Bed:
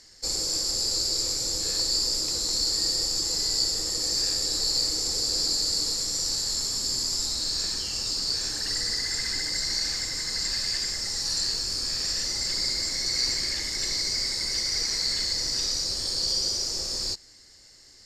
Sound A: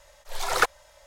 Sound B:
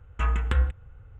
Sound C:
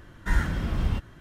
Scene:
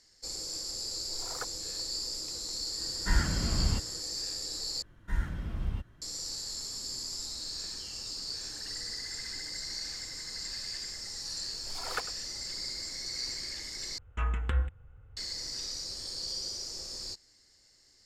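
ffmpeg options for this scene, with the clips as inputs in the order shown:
ffmpeg -i bed.wav -i cue0.wav -i cue1.wav -i cue2.wav -filter_complex "[1:a]asplit=2[link_01][link_02];[3:a]asplit=2[link_03][link_04];[0:a]volume=-10.5dB[link_05];[link_01]equalizer=frequency=2700:width=1.4:gain=-12[link_06];[link_04]lowshelf=frequency=130:gain=6.5[link_07];[link_02]aecho=1:1:100:0.168[link_08];[link_05]asplit=3[link_09][link_10][link_11];[link_09]atrim=end=4.824[link_12];[link_07]atrim=end=1.2,asetpts=PTS-STARTPTS,volume=-12.5dB[link_13];[link_10]atrim=start=6.016:end=13.984[link_14];[2:a]atrim=end=1.19,asetpts=PTS-STARTPTS,volume=-6dB[link_15];[link_11]atrim=start=15.166[link_16];[link_06]atrim=end=1.06,asetpts=PTS-STARTPTS,volume=-17dB,afade=type=in:duration=0.004:curve=hsin,afade=type=out:start_time=1.056:duration=0.004:curve=hsin,adelay=790[link_17];[link_03]atrim=end=1.2,asetpts=PTS-STARTPTS,volume=-3dB,afade=type=in:duration=0.004:curve=hsin,afade=type=out:start_time=1.196:duration=0.004:curve=hsin,adelay=2800[link_18];[link_08]atrim=end=1.06,asetpts=PTS-STARTPTS,volume=-14dB,afade=type=in:duration=0.004:curve=hsin,afade=type=out:start_time=1.056:duration=0.004:curve=hsin,adelay=11350[link_19];[link_12][link_13]acrossfade=duration=0.004:curve1=hsin:curve2=hsin[link_20];[link_20][link_14]acrossfade=duration=0.004:curve1=hsin:curve2=hsin[link_21];[link_21][link_15]acrossfade=duration=0.004:curve1=hsin:curve2=hsin[link_22];[link_22][link_16]acrossfade=duration=0.004:curve1=hsin:curve2=hsin[link_23];[link_23][link_17][link_18][link_19]amix=inputs=4:normalize=0" out.wav

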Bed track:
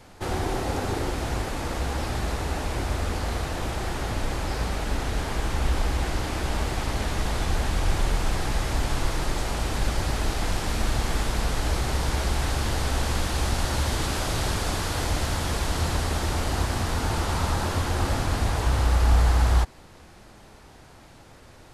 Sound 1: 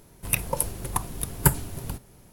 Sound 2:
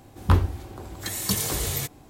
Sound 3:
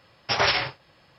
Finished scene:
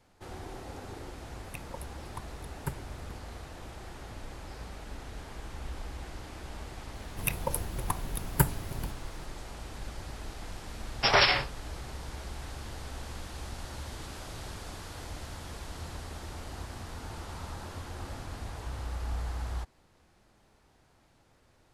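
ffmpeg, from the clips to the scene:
ffmpeg -i bed.wav -i cue0.wav -i cue1.wav -i cue2.wav -filter_complex "[1:a]asplit=2[link_01][link_02];[0:a]volume=-15.5dB[link_03];[link_01]aemphasis=mode=reproduction:type=50kf[link_04];[link_02]equalizer=frequency=8900:width_type=o:width=1.3:gain=-5[link_05];[link_04]atrim=end=2.32,asetpts=PTS-STARTPTS,volume=-14.5dB,afade=type=in:duration=0.004:curve=hsin,afade=type=out:start_time=2.316:duration=0.004:curve=hsin,adelay=1210[link_06];[link_05]atrim=end=2.32,asetpts=PTS-STARTPTS,volume=-4dB,afade=type=in:duration=0.004:curve=hsin,afade=type=out:start_time=2.316:duration=0.004:curve=hsin,adelay=6940[link_07];[3:a]atrim=end=1.18,asetpts=PTS-STARTPTS,volume=-0.5dB,afade=type=in:duration=0.004:curve=hsin,afade=type=out:start_time=1.176:duration=0.004:curve=hsin,adelay=473634S[link_08];[link_03][link_06][link_07][link_08]amix=inputs=4:normalize=0" out.wav

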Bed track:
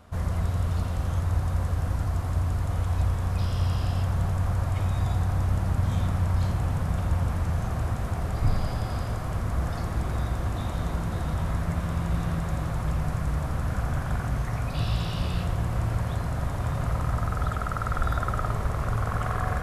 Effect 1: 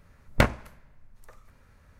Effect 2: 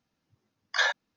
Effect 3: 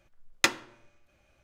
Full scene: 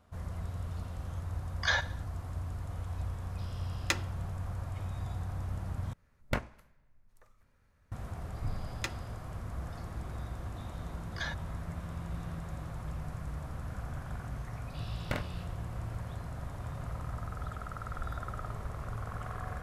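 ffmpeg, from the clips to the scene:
ffmpeg -i bed.wav -i cue0.wav -i cue1.wav -i cue2.wav -filter_complex "[2:a]asplit=2[link_01][link_02];[3:a]asplit=2[link_03][link_04];[1:a]asplit=2[link_05][link_06];[0:a]volume=-12dB[link_07];[link_01]aecho=1:1:73|146|219|292:0.119|0.057|0.0274|0.0131[link_08];[link_06]asplit=2[link_09][link_10];[link_10]adelay=47,volume=-4dB[link_11];[link_09][link_11]amix=inputs=2:normalize=0[link_12];[link_07]asplit=2[link_13][link_14];[link_13]atrim=end=5.934[link_15];[link_05]atrim=end=1.99,asetpts=PTS-STARTPTS,volume=-11.5dB[link_16];[link_14]atrim=start=7.916[link_17];[link_08]atrim=end=1.16,asetpts=PTS-STARTPTS,volume=-4dB,afade=type=in:duration=0.004:curve=hsin,afade=type=out:start_time=1.156:duration=0.004:curve=hsin,adelay=890[link_18];[link_03]atrim=end=1.43,asetpts=PTS-STARTPTS,volume=-7.5dB,afade=type=in:duration=0.004:curve=hsin,afade=type=out:start_time=1.426:duration=0.004:curve=hsin,adelay=3460[link_19];[link_04]atrim=end=1.43,asetpts=PTS-STARTPTS,volume=-14dB,afade=type=in:duration=0.004:curve=hsin,afade=type=out:start_time=1.426:duration=0.004:curve=hsin,adelay=8400[link_20];[link_02]atrim=end=1.16,asetpts=PTS-STARTPTS,volume=-13.5dB,afade=type=in:duration=0.004:curve=hsin,afade=type=out:start_time=1.156:duration=0.004:curve=hsin,adelay=459522S[link_21];[link_12]atrim=end=1.99,asetpts=PTS-STARTPTS,volume=-15dB,afade=type=in:duration=0.004:curve=hsin,afade=type=out:start_time=1.986:duration=0.004:curve=hsin,adelay=14710[link_22];[link_15][link_16]acrossfade=duration=0.004:curve1=hsin:curve2=hsin[link_23];[link_23][link_17]acrossfade=duration=0.004:curve1=hsin:curve2=hsin[link_24];[link_24][link_18][link_19][link_20][link_21][link_22]amix=inputs=6:normalize=0" out.wav

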